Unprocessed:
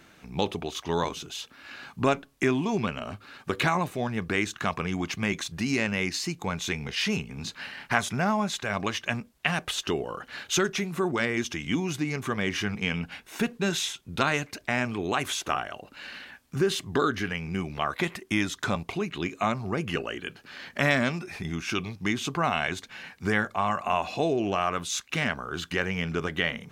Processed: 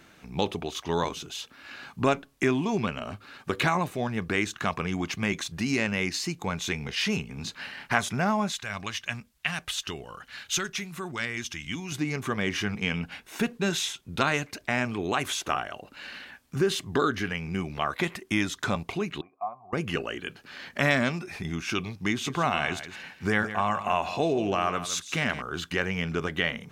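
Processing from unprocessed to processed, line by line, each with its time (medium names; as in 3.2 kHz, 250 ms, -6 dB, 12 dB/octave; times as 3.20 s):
8.52–11.92 s: peaking EQ 410 Hz -11.5 dB 2.8 oct
19.21–19.73 s: cascade formant filter a
22.10–25.42 s: delay 164 ms -12 dB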